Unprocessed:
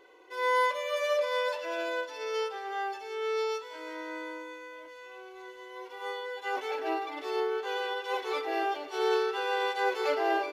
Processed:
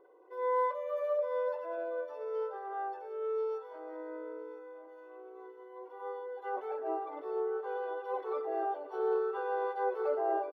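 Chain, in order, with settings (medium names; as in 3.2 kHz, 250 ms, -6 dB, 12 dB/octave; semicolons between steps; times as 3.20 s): resonances exaggerated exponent 1.5; high-order bell 4.1 kHz -15.5 dB 2.4 oct; feedback delay 1013 ms, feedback 31%, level -16.5 dB; trim -3.5 dB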